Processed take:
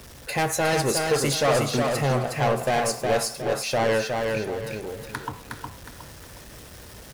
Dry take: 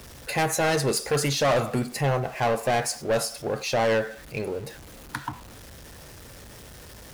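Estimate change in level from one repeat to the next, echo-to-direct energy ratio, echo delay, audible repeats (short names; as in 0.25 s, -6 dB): -9.5 dB, -3.5 dB, 0.363 s, 3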